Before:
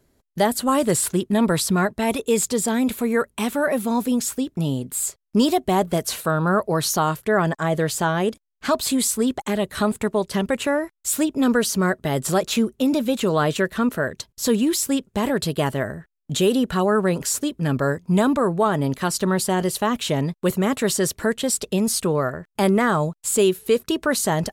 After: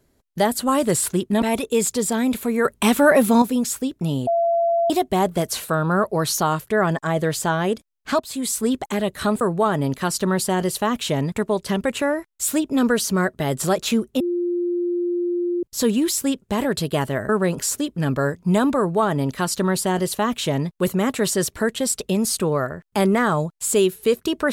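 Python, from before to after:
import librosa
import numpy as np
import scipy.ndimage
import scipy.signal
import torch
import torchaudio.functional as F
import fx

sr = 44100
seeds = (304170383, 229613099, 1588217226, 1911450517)

y = fx.edit(x, sr, fx.cut(start_s=1.42, length_s=0.56),
    fx.clip_gain(start_s=3.21, length_s=0.77, db=7.0),
    fx.bleep(start_s=4.83, length_s=0.63, hz=678.0, db=-16.0),
    fx.fade_in_from(start_s=8.76, length_s=0.45, floor_db=-16.0),
    fx.bleep(start_s=12.85, length_s=1.43, hz=350.0, db=-19.5),
    fx.cut(start_s=15.94, length_s=0.98),
    fx.duplicate(start_s=18.41, length_s=1.91, to_s=9.97), tone=tone)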